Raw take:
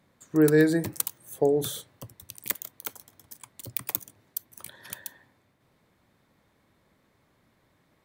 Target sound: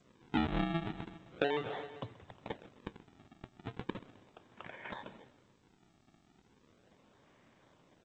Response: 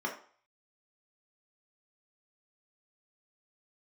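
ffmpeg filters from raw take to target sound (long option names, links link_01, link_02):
-filter_complex "[0:a]aresample=8000,acrusher=samples=9:mix=1:aa=0.000001:lfo=1:lforange=14.4:lforate=0.37,aresample=44100,lowshelf=frequency=120:gain=-11,asplit=2[link_01][link_02];[link_02]aecho=0:1:130|260|390|520:0.1|0.052|0.027|0.0141[link_03];[link_01][link_03]amix=inputs=2:normalize=0,acompressor=threshold=-32dB:ratio=12,highshelf=frequency=2300:gain=-4,volume=3.5dB" -ar 16000 -c:a g722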